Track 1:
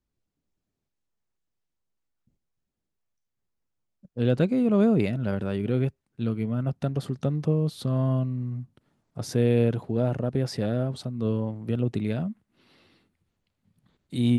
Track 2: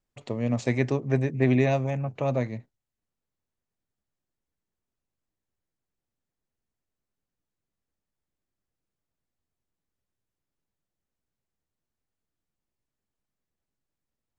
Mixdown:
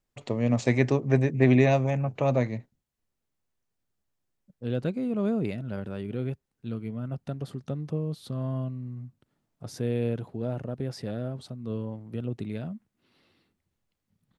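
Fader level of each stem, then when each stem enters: −6.5, +2.0 decibels; 0.45, 0.00 seconds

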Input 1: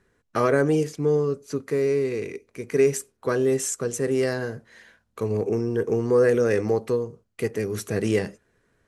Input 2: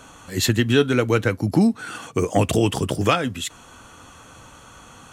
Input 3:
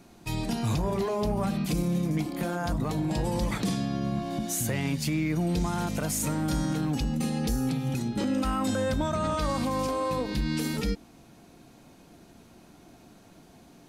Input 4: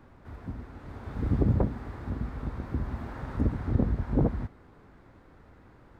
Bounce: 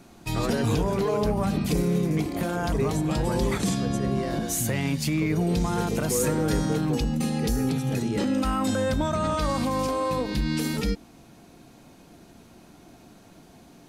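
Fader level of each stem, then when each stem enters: −9.5, −20.0, +2.5, −11.5 decibels; 0.00, 0.00, 0.00, 0.15 seconds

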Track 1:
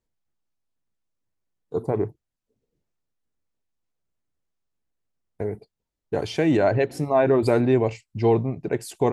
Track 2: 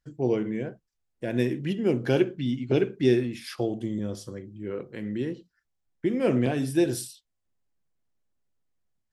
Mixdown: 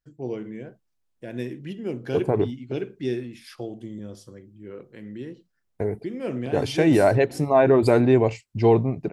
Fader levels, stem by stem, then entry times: +2.0, −6.0 decibels; 0.40, 0.00 seconds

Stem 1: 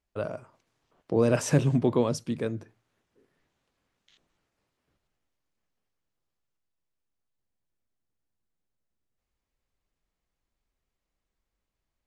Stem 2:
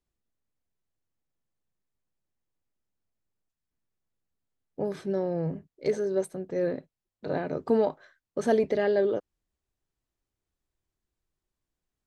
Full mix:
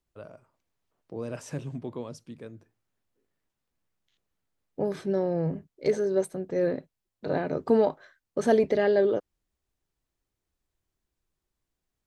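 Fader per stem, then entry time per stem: −12.5, +2.0 decibels; 0.00, 0.00 seconds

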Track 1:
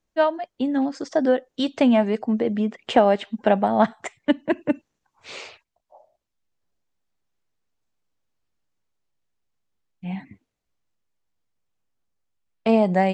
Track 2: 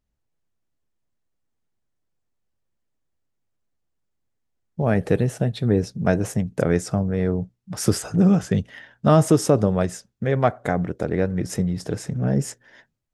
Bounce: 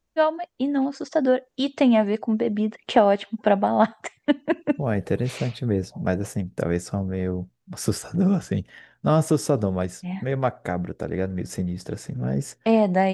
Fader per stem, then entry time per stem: −0.5, −4.0 decibels; 0.00, 0.00 seconds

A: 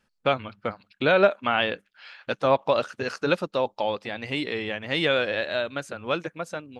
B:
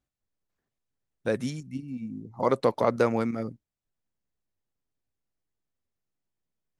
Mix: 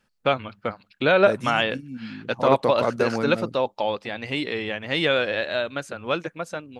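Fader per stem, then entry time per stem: +1.5, 0.0 decibels; 0.00, 0.00 seconds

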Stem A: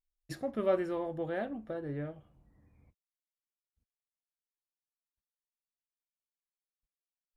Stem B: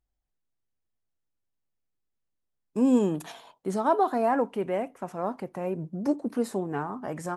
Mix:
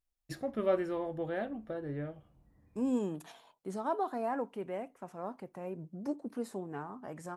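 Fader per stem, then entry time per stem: −0.5, −10.0 decibels; 0.00, 0.00 seconds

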